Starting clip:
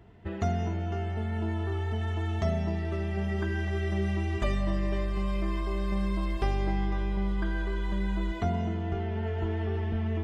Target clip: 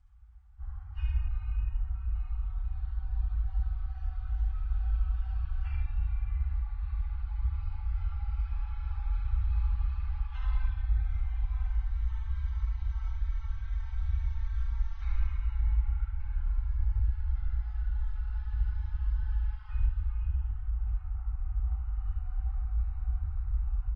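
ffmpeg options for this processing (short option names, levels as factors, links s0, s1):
-af "afftfilt=real='hypot(re,im)*cos(2*PI*random(0))':imag='hypot(re,im)*sin(2*PI*random(1))':win_size=512:overlap=0.75,afftfilt=real='re*(1-between(b*sr/4096,230,1700))':imag='im*(1-between(b*sr/4096,230,1700))':win_size=4096:overlap=0.75,equalizer=f=125:t=o:w=1:g=9,equalizer=f=250:t=o:w=1:g=-7,equalizer=f=2000:t=o:w=1:g=-12,asetrate=18846,aresample=44100,aecho=1:1:32.07|72.89|131.2:0.447|0.794|0.398" -ar 22050 -c:a libvorbis -b:a 48k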